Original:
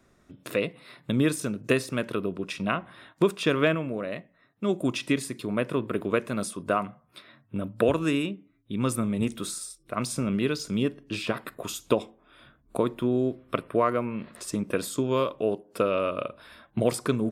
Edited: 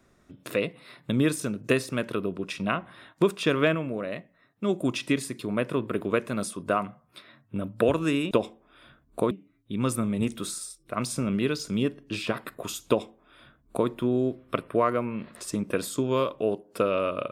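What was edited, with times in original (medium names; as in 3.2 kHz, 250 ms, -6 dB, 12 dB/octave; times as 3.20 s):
11.88–12.88 s: copy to 8.31 s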